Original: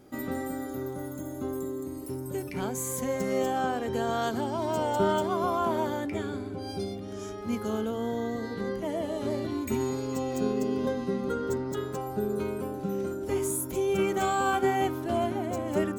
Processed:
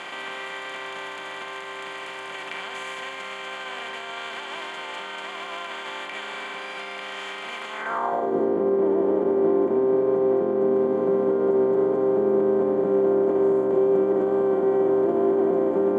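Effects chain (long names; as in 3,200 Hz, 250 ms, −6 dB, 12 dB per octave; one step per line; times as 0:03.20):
compressor on every frequency bin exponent 0.2
brickwall limiter −11.5 dBFS, peak gain reduction 6.5 dB
high-shelf EQ 5,300 Hz −3.5 dB, from 0:08.45 −10 dB, from 0:10.74 −3 dB
band-pass filter sweep 2,700 Hz → 370 Hz, 0:07.70–0:08.36
high-frequency loss of the air 57 metres
convolution reverb, pre-delay 6 ms, DRR 9 dB
level +4 dB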